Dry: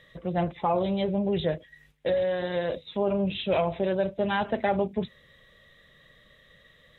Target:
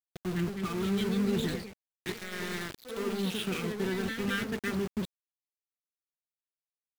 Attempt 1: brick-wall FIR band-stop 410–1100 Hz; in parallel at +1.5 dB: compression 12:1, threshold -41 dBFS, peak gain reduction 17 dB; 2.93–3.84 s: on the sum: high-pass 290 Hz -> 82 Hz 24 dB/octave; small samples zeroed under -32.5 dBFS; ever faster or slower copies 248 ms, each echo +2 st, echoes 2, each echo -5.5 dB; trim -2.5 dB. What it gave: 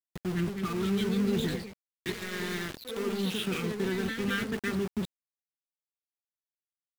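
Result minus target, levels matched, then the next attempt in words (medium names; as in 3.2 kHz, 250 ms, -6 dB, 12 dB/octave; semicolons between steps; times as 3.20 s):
compression: peak gain reduction -8.5 dB
brick-wall FIR band-stop 410–1100 Hz; in parallel at +1.5 dB: compression 12:1, threshold -50 dBFS, peak gain reduction 25.5 dB; 2.93–3.84 s: on the sum: high-pass 290 Hz -> 82 Hz 24 dB/octave; small samples zeroed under -32.5 dBFS; ever faster or slower copies 248 ms, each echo +2 st, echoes 2, each echo -5.5 dB; trim -2.5 dB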